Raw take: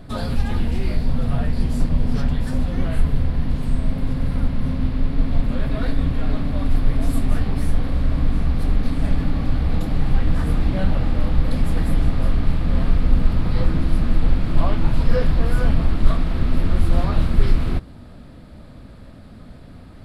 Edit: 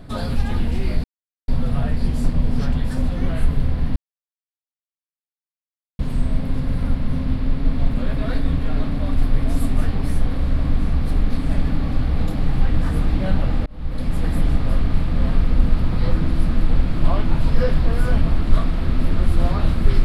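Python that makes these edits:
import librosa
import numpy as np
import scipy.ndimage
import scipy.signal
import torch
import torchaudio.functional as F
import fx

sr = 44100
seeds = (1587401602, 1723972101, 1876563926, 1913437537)

y = fx.edit(x, sr, fx.insert_silence(at_s=1.04, length_s=0.44),
    fx.insert_silence(at_s=3.52, length_s=2.03),
    fx.fade_in_span(start_s=11.19, length_s=0.81, curve='qsin'), tone=tone)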